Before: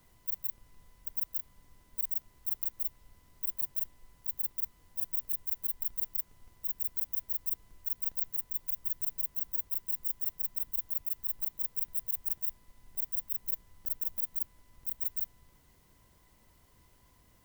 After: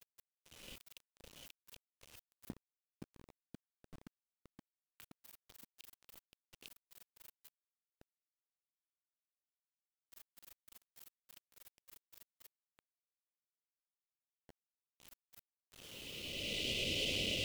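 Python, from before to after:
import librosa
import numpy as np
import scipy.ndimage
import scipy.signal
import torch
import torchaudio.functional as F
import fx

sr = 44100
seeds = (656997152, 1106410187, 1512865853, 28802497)

y = fx.block_reorder(x, sr, ms=104.0, group=4)
y = fx.recorder_agc(y, sr, target_db=-26.0, rise_db_per_s=22.0, max_gain_db=30)
y = scipy.signal.sosfilt(scipy.signal.ellip(3, 1.0, 40, [570.0, 2600.0], 'bandstop', fs=sr, output='sos'), y)
y = fx.tilt_eq(y, sr, slope=2.5)
y = fx.filter_lfo_lowpass(y, sr, shape='square', hz=0.2, low_hz=230.0, high_hz=2800.0, q=1.9)
y = fx.low_shelf(y, sr, hz=140.0, db=-9.5)
y = fx.hum_notches(y, sr, base_hz=60, count=3)
y = fx.echo_bbd(y, sr, ms=522, stages=4096, feedback_pct=69, wet_db=-5.0)
y = fx.noise_reduce_blind(y, sr, reduce_db=7)
y = fx.quant_dither(y, sr, seeds[0], bits=10, dither='none')
y = fx.buffer_crackle(y, sr, first_s=0.41, period_s=0.88, block=512, kind='repeat')
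y = y * librosa.db_to_amplitude(7.0)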